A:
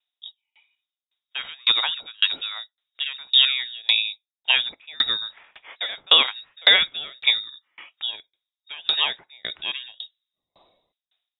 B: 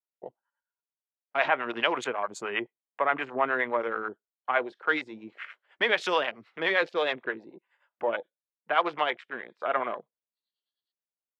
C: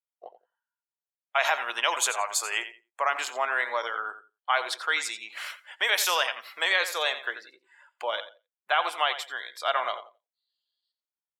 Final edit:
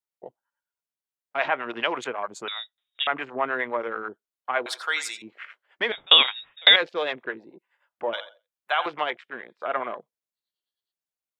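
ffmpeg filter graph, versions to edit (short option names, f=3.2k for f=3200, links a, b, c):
-filter_complex "[0:a]asplit=2[a][b];[2:a]asplit=2[c][d];[1:a]asplit=5[e][f][g][h][i];[e]atrim=end=2.482[j];[a]atrim=start=2.478:end=3.072[k];[f]atrim=start=3.068:end=4.662[l];[c]atrim=start=4.658:end=5.222[m];[g]atrim=start=5.218:end=5.922[n];[b]atrim=start=5.918:end=6.762[o];[h]atrim=start=6.758:end=8.132[p];[d]atrim=start=8.128:end=8.862[q];[i]atrim=start=8.858[r];[j][k]acrossfade=d=0.004:c1=hsin:c2=hsin[s];[s][l]acrossfade=d=0.004:c1=hsin:c2=hsin[t];[t][m]acrossfade=d=0.004:c1=hsin:c2=hsin[u];[u][n]acrossfade=d=0.004:c1=hsin:c2=hsin[v];[v][o]acrossfade=d=0.004:c1=hsin:c2=hsin[w];[w][p]acrossfade=d=0.004:c1=hsin:c2=hsin[x];[x][q]acrossfade=d=0.004:c1=hsin:c2=hsin[y];[y][r]acrossfade=d=0.004:c1=hsin:c2=hsin"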